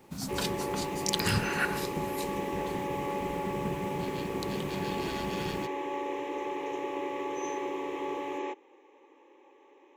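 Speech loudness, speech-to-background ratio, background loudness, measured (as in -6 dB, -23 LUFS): -35.0 LUFS, 0.0 dB, -35.0 LUFS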